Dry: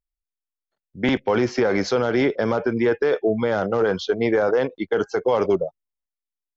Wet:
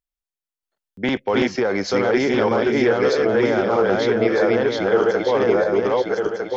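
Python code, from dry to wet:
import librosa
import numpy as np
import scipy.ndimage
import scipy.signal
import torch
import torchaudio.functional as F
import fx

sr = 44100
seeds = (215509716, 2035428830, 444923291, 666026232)

y = fx.reverse_delay_fb(x, sr, ms=627, feedback_pct=61, wet_db=0.0)
y = fx.low_shelf(y, sr, hz=170.0, db=-5.0)
y = fx.buffer_glitch(y, sr, at_s=(0.92,), block=256, repeats=8)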